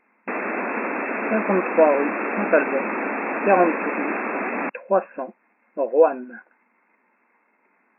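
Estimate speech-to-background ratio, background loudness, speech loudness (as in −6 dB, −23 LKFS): 4.0 dB, −26.0 LKFS, −22.0 LKFS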